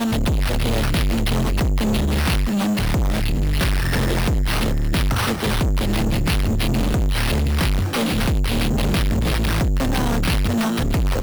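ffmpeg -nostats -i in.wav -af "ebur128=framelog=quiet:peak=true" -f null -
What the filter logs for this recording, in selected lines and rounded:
Integrated loudness:
  I:         -20.7 LUFS
  Threshold: -30.7 LUFS
Loudness range:
  LRA:         0.4 LU
  Threshold: -40.7 LUFS
  LRA low:   -20.9 LUFS
  LRA high:  -20.5 LUFS
True peak:
  Peak:      -14.6 dBFS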